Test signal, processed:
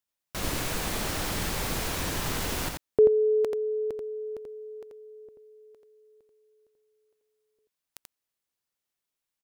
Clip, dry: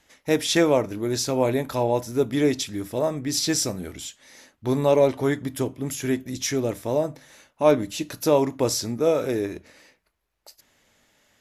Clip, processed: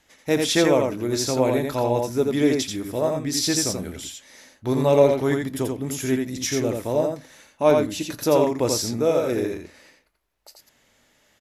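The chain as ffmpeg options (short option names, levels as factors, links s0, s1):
-af "aecho=1:1:85:0.631"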